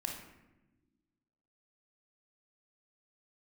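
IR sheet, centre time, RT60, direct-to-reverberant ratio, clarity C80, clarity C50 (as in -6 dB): 38 ms, no single decay rate, 1.0 dB, 7.5 dB, 3.5 dB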